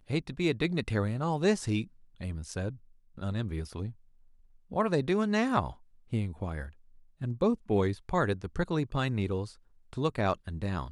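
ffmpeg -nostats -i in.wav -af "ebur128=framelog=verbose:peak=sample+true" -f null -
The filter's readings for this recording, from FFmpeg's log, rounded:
Integrated loudness:
  I:         -31.5 LUFS
  Threshold: -42.0 LUFS
Loudness range:
  LRA:         3.4 LU
  Threshold: -52.4 LUFS
  LRA low:   -34.7 LUFS
  LRA high:  -31.2 LUFS
Sample peak:
  Peak:      -12.6 dBFS
True peak:
  Peak:      -12.6 dBFS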